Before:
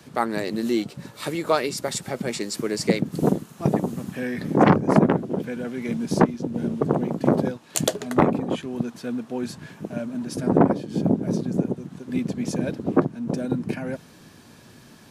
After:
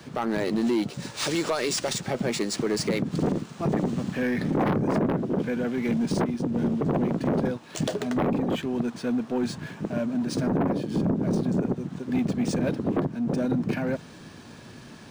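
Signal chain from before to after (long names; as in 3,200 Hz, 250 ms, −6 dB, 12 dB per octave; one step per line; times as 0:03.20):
0:00.93–0:01.93: bass and treble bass −2 dB, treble +12 dB
brickwall limiter −16 dBFS, peak gain reduction 11 dB
soft clipping −22 dBFS, distortion −14 dB
linearly interpolated sample-rate reduction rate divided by 3×
level +4 dB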